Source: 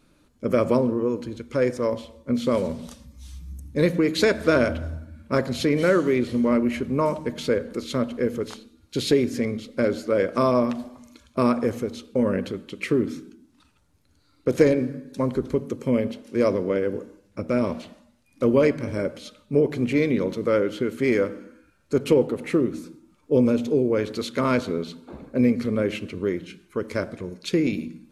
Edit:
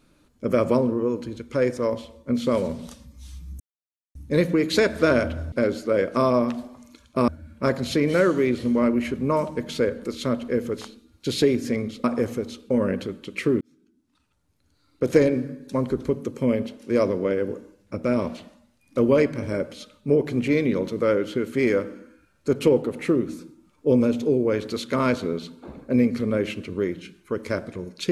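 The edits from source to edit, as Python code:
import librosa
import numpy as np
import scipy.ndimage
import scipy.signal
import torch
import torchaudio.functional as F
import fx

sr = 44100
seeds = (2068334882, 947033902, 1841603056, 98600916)

y = fx.edit(x, sr, fx.insert_silence(at_s=3.6, length_s=0.55),
    fx.move(start_s=9.73, length_s=1.76, to_s=4.97),
    fx.fade_in_span(start_s=13.06, length_s=1.58), tone=tone)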